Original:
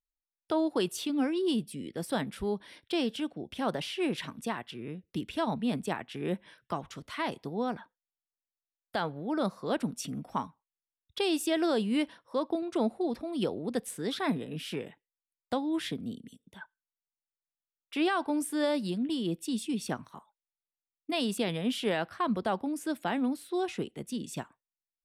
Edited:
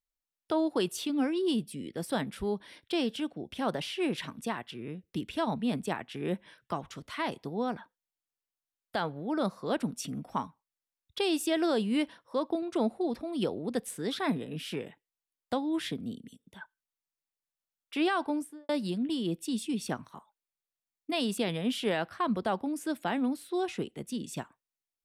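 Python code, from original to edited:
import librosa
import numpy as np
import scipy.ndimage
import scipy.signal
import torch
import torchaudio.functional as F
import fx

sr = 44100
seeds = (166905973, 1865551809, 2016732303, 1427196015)

y = fx.studio_fade_out(x, sr, start_s=18.23, length_s=0.46)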